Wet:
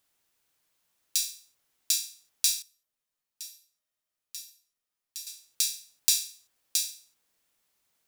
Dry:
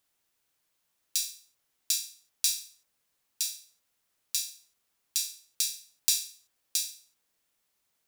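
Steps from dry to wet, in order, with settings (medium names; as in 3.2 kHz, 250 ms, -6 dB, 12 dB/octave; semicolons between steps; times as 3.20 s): 2.62–5.27 s: feedback comb 620 Hz, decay 0.47 s, mix 80%; trim +2 dB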